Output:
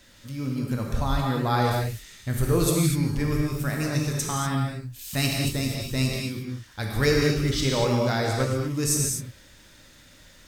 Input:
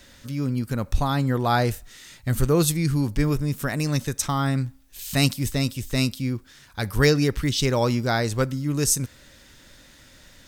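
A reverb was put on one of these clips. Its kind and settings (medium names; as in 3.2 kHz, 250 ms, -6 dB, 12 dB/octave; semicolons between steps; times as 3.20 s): gated-style reverb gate 270 ms flat, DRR -1.5 dB; trim -5 dB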